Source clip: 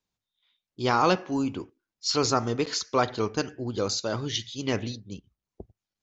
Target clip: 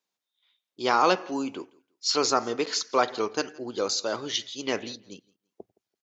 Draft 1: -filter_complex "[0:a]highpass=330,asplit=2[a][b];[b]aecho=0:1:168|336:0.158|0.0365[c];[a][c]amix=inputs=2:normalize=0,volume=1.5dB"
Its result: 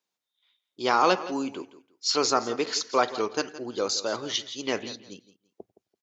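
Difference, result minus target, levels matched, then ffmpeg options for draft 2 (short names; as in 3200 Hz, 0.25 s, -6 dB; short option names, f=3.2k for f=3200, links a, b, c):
echo-to-direct +9 dB
-filter_complex "[0:a]highpass=330,asplit=2[a][b];[b]aecho=0:1:168|336:0.0562|0.0129[c];[a][c]amix=inputs=2:normalize=0,volume=1.5dB"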